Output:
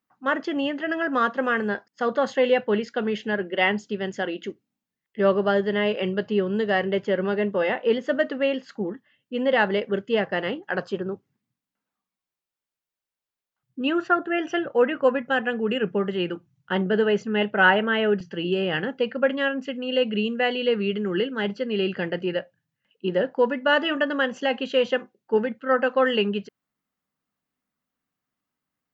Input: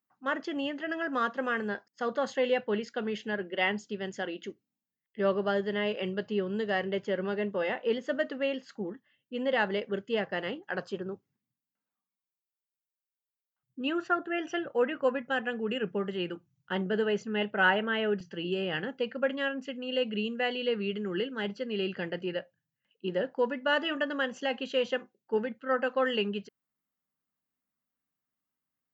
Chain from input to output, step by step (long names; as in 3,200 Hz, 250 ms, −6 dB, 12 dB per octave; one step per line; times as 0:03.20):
high-shelf EQ 5,700 Hz −8.5 dB
level +7.5 dB